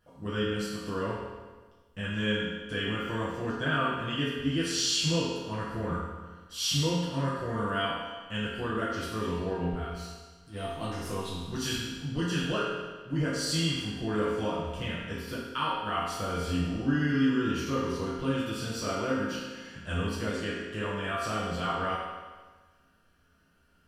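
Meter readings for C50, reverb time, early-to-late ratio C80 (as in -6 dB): -1.5 dB, 1.4 s, 1.5 dB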